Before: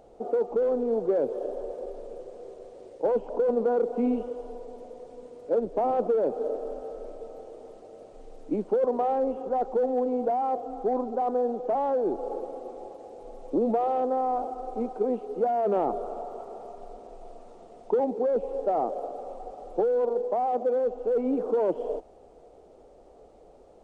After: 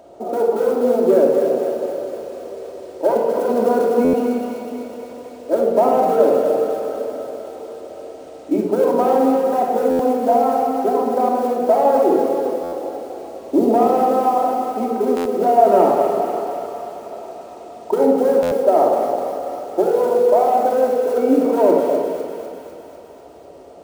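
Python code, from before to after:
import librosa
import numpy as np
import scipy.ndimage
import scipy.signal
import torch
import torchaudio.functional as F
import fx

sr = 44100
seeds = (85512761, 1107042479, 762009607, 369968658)

y = scipy.signal.sosfilt(scipy.signal.butter(4, 62.0, 'highpass', fs=sr, output='sos'), x)
y = fx.low_shelf(y, sr, hz=120.0, db=-7.5)
y = fx.hum_notches(y, sr, base_hz=50, count=10)
y = fx.quant_float(y, sr, bits=4)
y = fx.echo_wet_highpass(y, sr, ms=250, feedback_pct=66, hz=1600.0, wet_db=-3)
y = fx.room_shoebox(y, sr, seeds[0], volume_m3=2600.0, walls='mixed', distance_m=2.8)
y = fx.buffer_glitch(y, sr, at_s=(4.04, 9.9, 12.63, 15.16, 18.42), block=512, repeats=7)
y = y * librosa.db_to_amplitude(8.5)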